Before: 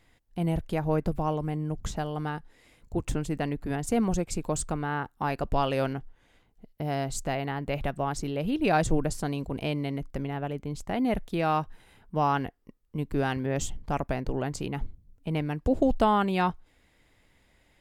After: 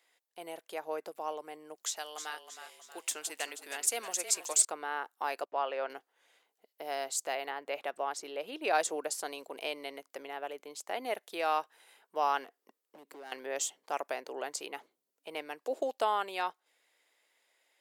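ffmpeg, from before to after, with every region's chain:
-filter_complex "[0:a]asettb=1/sr,asplit=3[s0][s1][s2];[s0]atrim=end=1.764[s3];[s1]atrim=start=1.76:end=4.65,asetpts=PTS-STARTPTS,afade=t=in:d=0.004:c=qsin,afade=t=out:st=2.886:d=0.004:c=qsin,tiltshelf=f=1300:g=-7.5,asplit=6[s4][s5][s6][s7][s8][s9];[s5]adelay=317,afreqshift=-31,volume=0.335[s10];[s6]adelay=634,afreqshift=-62,volume=0.16[s11];[s7]adelay=951,afreqshift=-93,volume=0.0767[s12];[s8]adelay=1268,afreqshift=-124,volume=0.0372[s13];[s9]adelay=1585,afreqshift=-155,volume=0.0178[s14];[s4][s10][s11][s12][s13][s14]amix=inputs=6:normalize=0,atrim=end_sample=127449[s15];[s2]atrim=start=4.646[s16];[s3][s15]acrossfade=d=0.004:c1=hsin:c2=qsin[s17];[s17][s16]acrossfade=d=0.004:c1=qsin:c2=hsin,asettb=1/sr,asplit=3[s18][s19][s20];[s18]atrim=end=5.454[s21];[s19]atrim=start=5.45:end=5.9,asetpts=PTS-STARTPTS,afade=t=in:d=0.004:c=qsin,afade=t=out:st=0.446:d=0.004:c=qsin,lowpass=2000,lowshelf=f=210:g=-11,agate=range=0.126:threshold=0.00708:ratio=16:release=100:detection=peak[s22];[s20]atrim=start=5.896[s23];[s21][s22]acrossfade=d=0.004:c1=hsin:c2=qsin[s24];[s24][s23]acrossfade=d=0.004:c1=qsin:c2=hsin,asettb=1/sr,asplit=3[s25][s26][s27];[s25]atrim=end=7.504[s28];[s26]atrim=start=7.5:end=8.75,asetpts=PTS-STARTPTS,afade=t=in:d=0.004:c=qsin,afade=t=out:st=1.246:d=0.004:c=qsin,highshelf=f=4600:g=-7.5,acompressor=mode=upward:threshold=0.0251:ratio=2.5:attack=3.2:release=140:knee=2.83:detection=peak[s29];[s27]atrim=start=8.746[s30];[s28][s29]acrossfade=d=0.004:c1=hsin:c2=qsin[s31];[s31][s30]acrossfade=d=0.004:c1=qsin:c2=hsin,asettb=1/sr,asplit=3[s32][s33][s34];[s32]atrim=end=12.444[s35];[s33]atrim=start=12.44:end=13.32,asetpts=PTS-STARTPTS,afade=t=in:d=0.004:c=qsin,afade=t=out:st=0.876:d=0.004:c=qsin,equalizer=f=210:t=o:w=2.2:g=8,acompressor=threshold=0.0316:ratio=12:attack=3.2:release=140:knee=1:detection=peak,asoftclip=type=hard:threshold=0.0266[s36];[s34]atrim=start=13.316[s37];[s35][s36]acrossfade=d=0.004:c1=hsin:c2=qsin[s38];[s38][s37]acrossfade=d=0.004:c1=qsin:c2=hsin,highpass=f=430:w=0.5412,highpass=f=430:w=1.3066,highshelf=f=3300:g=7.5,dynaudnorm=f=130:g=31:m=1.5,volume=0.422"

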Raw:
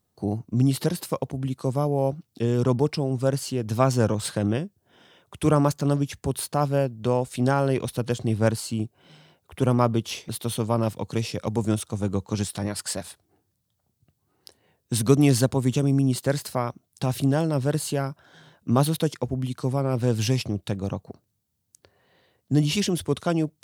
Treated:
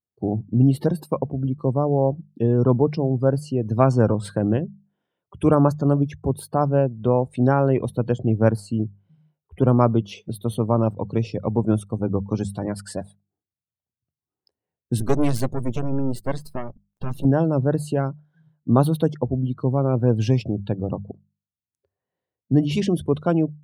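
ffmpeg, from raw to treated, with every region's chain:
-filter_complex "[0:a]asettb=1/sr,asplit=3[s0][s1][s2];[s0]atrim=end=15.004[s3];[s1]atrim=start=15:end=17.25,asetpts=PTS-STARTPTS,afade=t=in:d=0.004:c=qsin,afade=t=out:st=2.246:d=0.004:c=qsin,aeval=exprs='max(val(0),0)':c=same,adynamicequalizer=threshold=0.00447:dfrequency=2600:dqfactor=0.7:tfrequency=2600:tqfactor=0.7:attack=5:release=100:ratio=0.375:range=2.5:mode=boostabove:tftype=highshelf[s4];[s2]atrim=start=17.246[s5];[s3][s4]acrossfade=d=0.004:c1=hsin:c2=qsin[s6];[s6][s5]acrossfade=d=0.004:c1=qsin:c2=hsin,afftdn=nr=26:nf=-38,equalizer=f=6500:t=o:w=2.7:g=-13.5,bandreject=f=50:t=h:w=6,bandreject=f=100:t=h:w=6,bandreject=f=150:t=h:w=6,bandreject=f=200:t=h:w=6,volume=1.68"

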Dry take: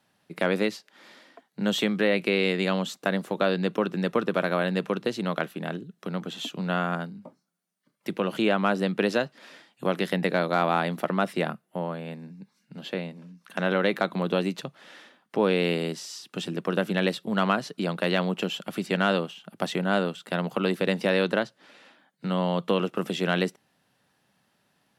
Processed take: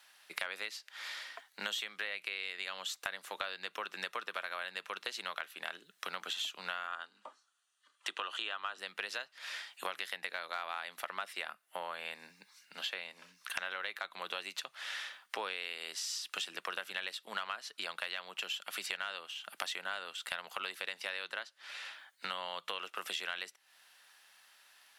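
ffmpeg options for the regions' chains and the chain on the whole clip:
-filter_complex "[0:a]asettb=1/sr,asplit=3[s0][s1][s2];[s0]atrim=end=6.874[s3];[s1]atrim=start=6.87:end=8.78,asetpts=PTS-STARTPTS,afade=t=in:d=0.004:c=qsin,afade=t=out:st=1.906:d=0.004:c=qsin,highpass=f=240:w=0.5412,highpass=f=240:w=1.3066,equalizer=f=560:t=q:w=4:g=-3,equalizer=f=1200:t=q:w=4:g=5,equalizer=f=3200:t=q:w=4:g=5,equalizer=f=5100:t=q:w=4:g=-7,lowpass=f=8700:w=0.5412,lowpass=f=8700:w=1.3066,bandreject=f=2200:w=6.4[s4];[s2]atrim=start=8.776[s5];[s3][s4]acrossfade=d=0.004:c1=hsin:c2=qsin[s6];[s6][s5]acrossfade=d=0.004:c1=qsin:c2=hsin,highpass=1400,acompressor=threshold=0.00501:ratio=10,volume=3.35"

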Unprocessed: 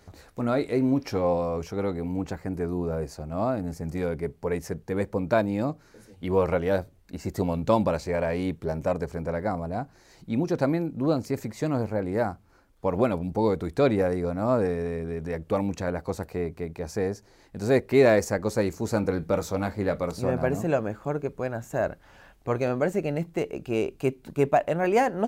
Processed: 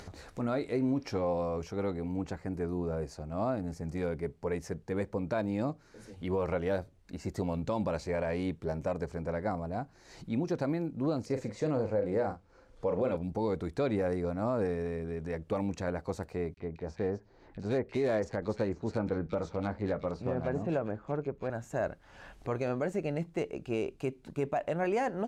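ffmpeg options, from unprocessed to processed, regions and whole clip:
-filter_complex "[0:a]asettb=1/sr,asplit=3[s0][s1][s2];[s0]atrim=end=11.264[s3];[s1]atrim=start=11.26:end=13.17,asetpts=PTS-STARTPTS,afade=t=in:d=0.004:c=qsin,afade=t=out:st=1.906:d=0.004:c=qsin,lowpass=8300,equalizer=f=500:w=5.7:g=11.5,asplit=2[s4][s5];[s5]adelay=39,volume=0.376[s6];[s4][s6]amix=inputs=2:normalize=0,atrim=end_sample=84231[s7];[s2]atrim=start=13.166[s8];[s3][s7]acrossfade=d=0.004:c1=hsin:c2=qsin[s9];[s9][s8]acrossfade=d=0.004:c1=qsin:c2=hsin,asettb=1/sr,asplit=3[s10][s11][s12];[s10]atrim=end=16.544[s13];[s11]atrim=start=16.54:end=21.5,asetpts=PTS-STARTPTS,afade=t=in:d=0.004:c=qsin,afade=t=out:st=4.956:d=0.004:c=qsin,adynamicsmooth=sensitivity=3.5:basefreq=2900,acrossover=split=2200[s14][s15];[s14]adelay=30[s16];[s16][s15]amix=inputs=2:normalize=0,atrim=end_sample=218736[s17];[s12]atrim=start=21.496[s18];[s13][s17]acrossfade=d=0.004:c1=hsin:c2=qsin[s19];[s19][s18]acrossfade=d=0.004:c1=qsin:c2=hsin,lowpass=9000,acompressor=mode=upward:threshold=0.02:ratio=2.5,alimiter=limit=0.141:level=0:latency=1:release=86,volume=0.562"

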